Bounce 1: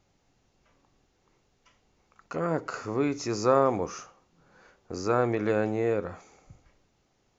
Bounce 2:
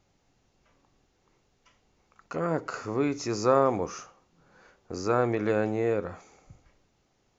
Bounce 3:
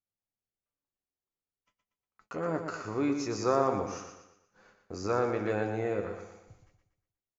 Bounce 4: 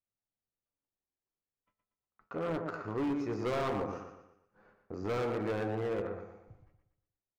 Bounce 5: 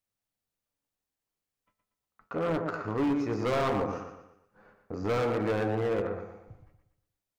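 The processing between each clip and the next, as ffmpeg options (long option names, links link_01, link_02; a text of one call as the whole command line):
ffmpeg -i in.wav -af anull out.wav
ffmpeg -i in.wav -af "agate=range=-29dB:threshold=-58dB:ratio=16:detection=peak,flanger=delay=9.2:depth=1.6:regen=54:speed=0.46:shape=triangular,aecho=1:1:119|238|357|476|595:0.422|0.173|0.0709|0.0291|0.0119" out.wav
ffmpeg -i in.wav -af "bandreject=frequency=86.91:width_type=h:width=4,bandreject=frequency=173.82:width_type=h:width=4,bandreject=frequency=260.73:width_type=h:width=4,bandreject=frequency=347.64:width_type=h:width=4,bandreject=frequency=434.55:width_type=h:width=4,bandreject=frequency=521.46:width_type=h:width=4,bandreject=frequency=608.37:width_type=h:width=4,bandreject=frequency=695.28:width_type=h:width=4,bandreject=frequency=782.19:width_type=h:width=4,bandreject=frequency=869.1:width_type=h:width=4,bandreject=frequency=956.01:width_type=h:width=4,bandreject=frequency=1042.92:width_type=h:width=4,bandreject=frequency=1129.83:width_type=h:width=4,bandreject=frequency=1216.74:width_type=h:width=4,bandreject=frequency=1303.65:width_type=h:width=4,bandreject=frequency=1390.56:width_type=h:width=4,bandreject=frequency=1477.47:width_type=h:width=4,bandreject=frequency=1564.38:width_type=h:width=4,bandreject=frequency=1651.29:width_type=h:width=4,bandreject=frequency=1738.2:width_type=h:width=4,bandreject=frequency=1825.11:width_type=h:width=4,bandreject=frequency=1912.02:width_type=h:width=4,bandreject=frequency=1998.93:width_type=h:width=4,bandreject=frequency=2085.84:width_type=h:width=4,bandreject=frequency=2172.75:width_type=h:width=4,bandreject=frequency=2259.66:width_type=h:width=4,bandreject=frequency=2346.57:width_type=h:width=4,bandreject=frequency=2433.48:width_type=h:width=4,bandreject=frequency=2520.39:width_type=h:width=4,bandreject=frequency=2607.3:width_type=h:width=4,bandreject=frequency=2694.21:width_type=h:width=4,bandreject=frequency=2781.12:width_type=h:width=4,bandreject=frequency=2868.03:width_type=h:width=4,adynamicsmooth=sensitivity=2:basefreq=1800,asoftclip=type=hard:threshold=-29.5dB" out.wav
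ffmpeg -i in.wav -af "bandreject=frequency=370:width=12,volume=5.5dB" out.wav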